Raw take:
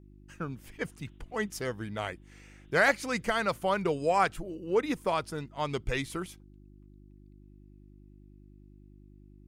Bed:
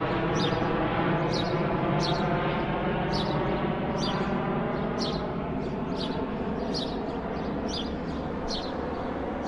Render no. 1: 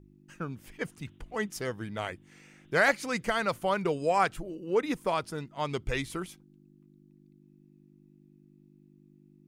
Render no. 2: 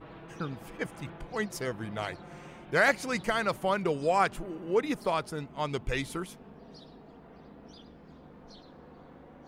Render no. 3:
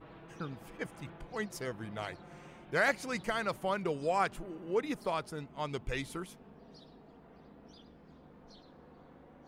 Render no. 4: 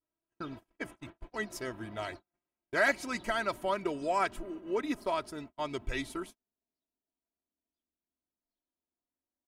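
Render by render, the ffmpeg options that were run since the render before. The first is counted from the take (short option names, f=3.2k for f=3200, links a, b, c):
-af "bandreject=f=50:t=h:w=4,bandreject=f=100:t=h:w=4"
-filter_complex "[1:a]volume=-21dB[a];[0:a][a]amix=inputs=2:normalize=0"
-af "volume=-5dB"
-af "agate=range=-43dB:threshold=-45dB:ratio=16:detection=peak,aecho=1:1:3.1:0.63"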